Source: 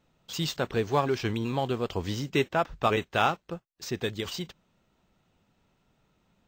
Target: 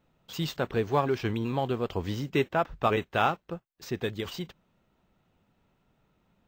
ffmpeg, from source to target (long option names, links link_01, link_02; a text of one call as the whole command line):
ffmpeg -i in.wav -af "equalizer=frequency=6400:width_type=o:width=1.8:gain=-7" out.wav